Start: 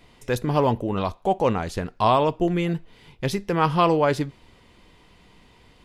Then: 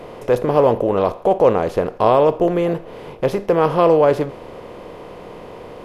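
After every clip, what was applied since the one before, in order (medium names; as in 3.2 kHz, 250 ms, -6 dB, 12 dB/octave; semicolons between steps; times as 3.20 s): spectral levelling over time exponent 0.6; graphic EQ 500/4000/8000 Hz +11/-4/-5 dB; trim -3 dB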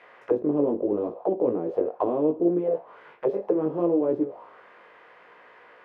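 chorus 0.73 Hz, delay 16 ms, depth 4.8 ms; auto-wah 300–2100 Hz, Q 3.3, down, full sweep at -16 dBFS; trim +2.5 dB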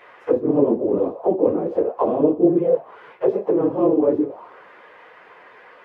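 phase randomisation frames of 50 ms; trim +5.5 dB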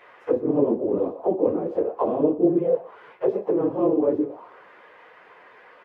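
delay 120 ms -22 dB; trim -3.5 dB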